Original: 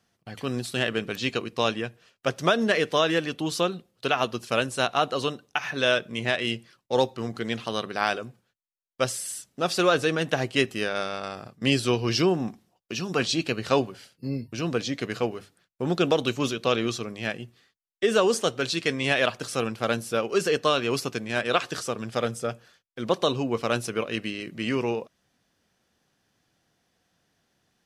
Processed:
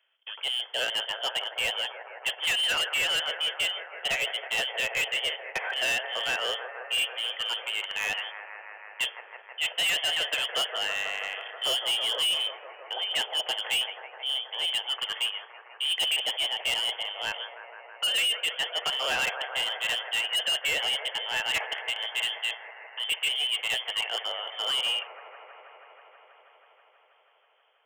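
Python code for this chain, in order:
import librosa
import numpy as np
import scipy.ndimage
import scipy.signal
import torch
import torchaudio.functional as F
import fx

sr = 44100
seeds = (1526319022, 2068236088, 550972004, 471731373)

p1 = x + fx.echo_wet_highpass(x, sr, ms=161, feedback_pct=84, hz=1600.0, wet_db=-10.0, dry=0)
p2 = fx.freq_invert(p1, sr, carrier_hz=3300)
p3 = scipy.signal.sosfilt(scipy.signal.butter(8, 450.0, 'highpass', fs=sr, output='sos'), p2)
y = np.clip(10.0 ** (23.5 / 20.0) * p3, -1.0, 1.0) / 10.0 ** (23.5 / 20.0)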